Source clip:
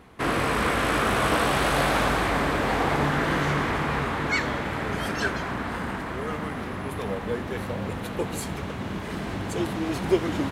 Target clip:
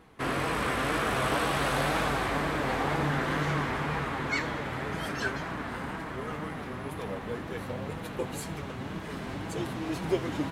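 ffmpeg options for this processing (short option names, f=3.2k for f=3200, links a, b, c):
-af "flanger=delay=6.1:depth=1.8:regen=54:speed=2:shape=sinusoidal,volume=-1dB"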